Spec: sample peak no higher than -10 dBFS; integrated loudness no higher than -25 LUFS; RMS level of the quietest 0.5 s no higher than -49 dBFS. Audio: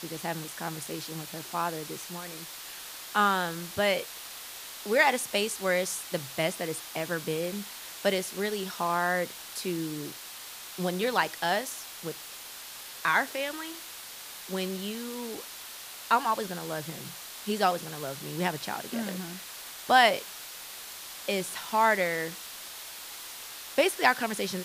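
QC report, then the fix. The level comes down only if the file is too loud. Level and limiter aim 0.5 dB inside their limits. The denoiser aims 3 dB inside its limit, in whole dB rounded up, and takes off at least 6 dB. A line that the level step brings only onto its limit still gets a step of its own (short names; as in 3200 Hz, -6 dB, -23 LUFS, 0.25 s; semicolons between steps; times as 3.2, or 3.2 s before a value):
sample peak -6.5 dBFS: fail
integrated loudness -30.5 LUFS: OK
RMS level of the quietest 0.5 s -44 dBFS: fail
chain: denoiser 8 dB, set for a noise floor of -44 dBFS; limiter -10.5 dBFS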